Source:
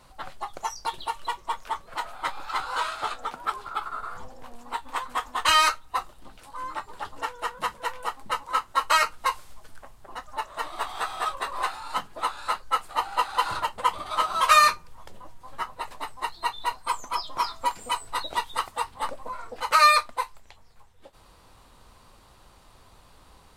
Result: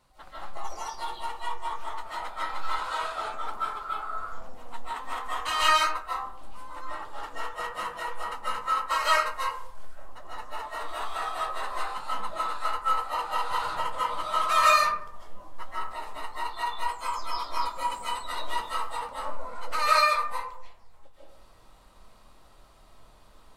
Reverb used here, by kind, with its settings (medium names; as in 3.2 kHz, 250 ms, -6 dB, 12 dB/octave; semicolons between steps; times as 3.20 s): algorithmic reverb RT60 0.74 s, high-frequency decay 0.4×, pre-delay 110 ms, DRR -8.5 dB; trim -11.5 dB